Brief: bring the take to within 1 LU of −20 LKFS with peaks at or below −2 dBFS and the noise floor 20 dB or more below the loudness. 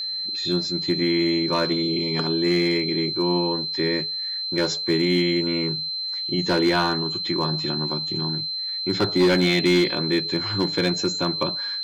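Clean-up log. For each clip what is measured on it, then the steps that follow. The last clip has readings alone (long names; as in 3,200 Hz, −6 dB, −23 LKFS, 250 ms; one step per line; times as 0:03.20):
share of clipped samples 0.7%; peaks flattened at −13.0 dBFS; interfering tone 4,100 Hz; level of the tone −26 dBFS; integrated loudness −22.0 LKFS; sample peak −13.0 dBFS; target loudness −20.0 LKFS
→ clipped peaks rebuilt −13 dBFS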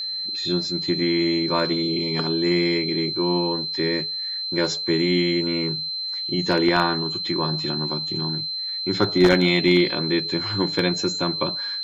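share of clipped samples 0.0%; interfering tone 4,100 Hz; level of the tone −26 dBFS
→ notch filter 4,100 Hz, Q 30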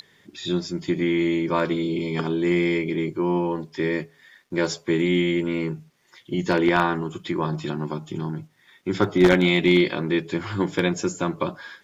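interfering tone none found; integrated loudness −23.5 LKFS; sample peak −3.5 dBFS; target loudness −20.0 LKFS
→ level +3.5 dB
brickwall limiter −2 dBFS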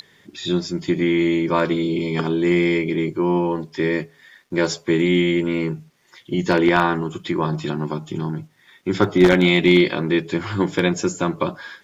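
integrated loudness −20.0 LKFS; sample peak −2.0 dBFS; background noise floor −56 dBFS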